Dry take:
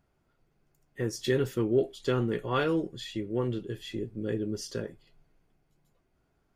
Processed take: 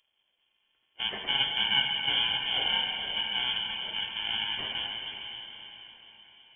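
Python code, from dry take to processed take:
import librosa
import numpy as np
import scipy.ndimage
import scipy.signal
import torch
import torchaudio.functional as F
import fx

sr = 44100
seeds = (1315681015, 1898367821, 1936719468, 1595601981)

y = fx.bit_reversed(x, sr, seeds[0], block=64)
y = fx.highpass(y, sr, hz=210.0, slope=6)
y = fx.echo_diffused(y, sr, ms=471, feedback_pct=48, wet_db=-12.5)
y = fx.rev_plate(y, sr, seeds[1], rt60_s=3.8, hf_ratio=0.85, predelay_ms=0, drr_db=1.0)
y = fx.freq_invert(y, sr, carrier_hz=3300)
y = y * 10.0 ** (2.5 / 20.0)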